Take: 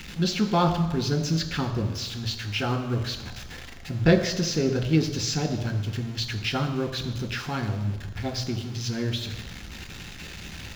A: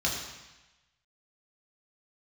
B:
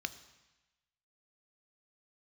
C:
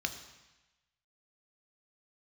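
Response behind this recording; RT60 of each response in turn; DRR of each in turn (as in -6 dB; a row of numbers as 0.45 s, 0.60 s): C; 1.0 s, 1.0 s, 1.0 s; -3.5 dB, 11.5 dB, 6.5 dB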